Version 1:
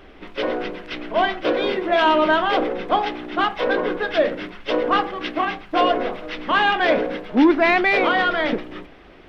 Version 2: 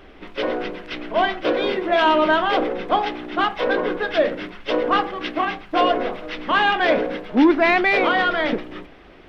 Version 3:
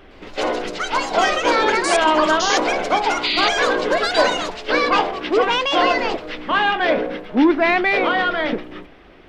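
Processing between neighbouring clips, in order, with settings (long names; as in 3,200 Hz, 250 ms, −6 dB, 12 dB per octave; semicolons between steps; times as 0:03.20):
no processing that can be heard
sound drawn into the spectrogram noise, 0:03.23–0:03.49, 1,900–4,900 Hz −21 dBFS; delay with pitch and tempo change per echo 111 ms, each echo +6 semitones, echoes 2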